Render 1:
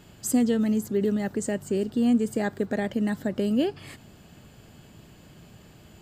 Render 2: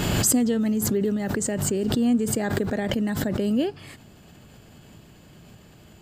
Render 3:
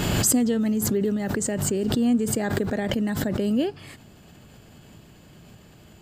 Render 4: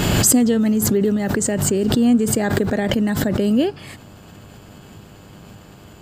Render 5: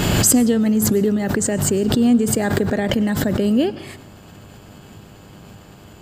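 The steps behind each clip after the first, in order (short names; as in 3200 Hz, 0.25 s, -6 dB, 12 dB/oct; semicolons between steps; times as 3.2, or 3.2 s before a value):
backwards sustainer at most 22 dB/s
nothing audible
buzz 100 Hz, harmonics 16, -54 dBFS -4 dB/oct; gain +6 dB
reverb RT60 0.80 s, pre-delay 92 ms, DRR 18 dB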